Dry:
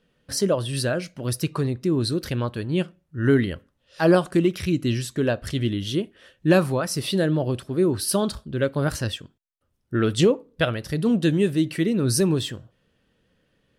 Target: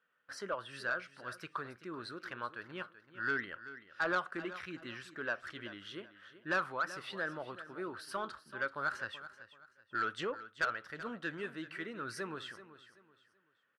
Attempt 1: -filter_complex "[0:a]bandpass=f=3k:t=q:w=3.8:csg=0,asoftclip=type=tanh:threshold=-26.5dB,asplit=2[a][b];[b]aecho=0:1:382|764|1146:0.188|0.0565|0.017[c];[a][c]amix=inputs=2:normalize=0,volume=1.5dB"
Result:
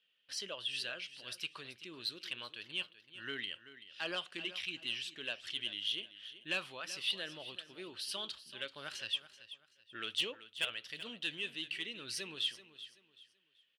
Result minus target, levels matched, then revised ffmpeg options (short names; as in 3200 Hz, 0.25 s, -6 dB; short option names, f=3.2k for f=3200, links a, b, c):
1000 Hz band -13.0 dB
-filter_complex "[0:a]bandpass=f=1.4k:t=q:w=3.8:csg=0,asoftclip=type=tanh:threshold=-26.5dB,asplit=2[a][b];[b]aecho=0:1:382|764|1146:0.188|0.0565|0.017[c];[a][c]amix=inputs=2:normalize=0,volume=1.5dB"